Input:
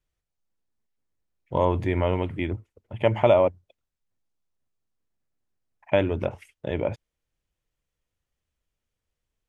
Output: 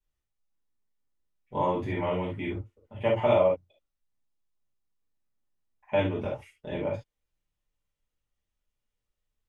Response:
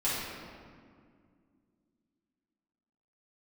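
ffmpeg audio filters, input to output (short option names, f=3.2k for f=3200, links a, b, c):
-filter_complex "[1:a]atrim=start_sample=2205,atrim=end_sample=3969,asetrate=48510,aresample=44100[a];[0:a][a]afir=irnorm=-1:irlink=0,volume=-9dB"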